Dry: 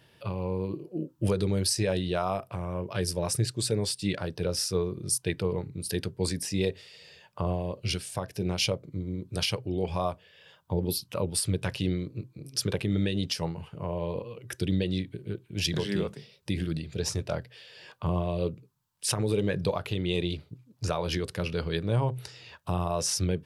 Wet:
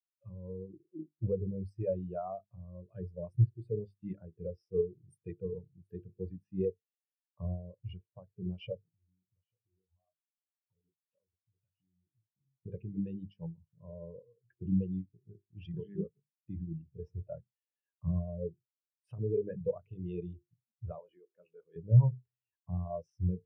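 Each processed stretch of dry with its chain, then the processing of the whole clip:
8.88–12.66 s: chorus 1.5 Hz, delay 18.5 ms, depth 3.3 ms + compression 12:1, threshold -42 dBFS
20.99–21.76 s: zero-crossing glitches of -26 dBFS + frequency weighting A + de-esser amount 80%
whole clip: high-order bell 6.4 kHz -11.5 dB; hum notches 50/100/150/200/250/300/350/400/450 Hz; spectral contrast expander 2.5:1; trim +2 dB

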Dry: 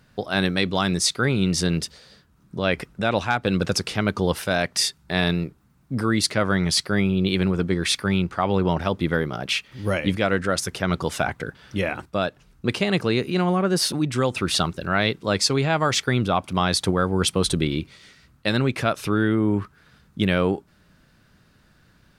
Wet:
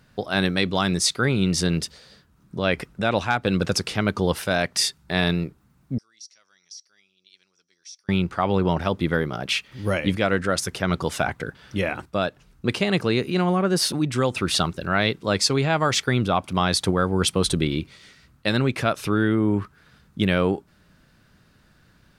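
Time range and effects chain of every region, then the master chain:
5.98–8.09 s: band-pass filter 5.7 kHz, Q 17 + compression 4:1, threshold -38 dBFS
whole clip: none

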